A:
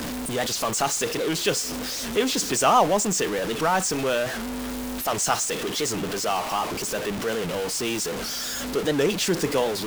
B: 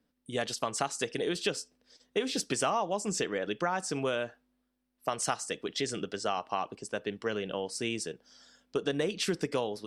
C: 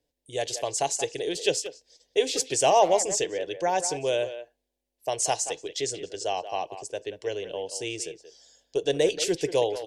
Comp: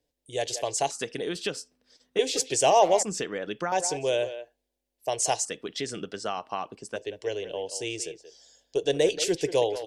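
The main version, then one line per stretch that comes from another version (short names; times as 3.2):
C
0.91–2.19 from B
3.03–3.72 from B
5.45–6.96 from B
not used: A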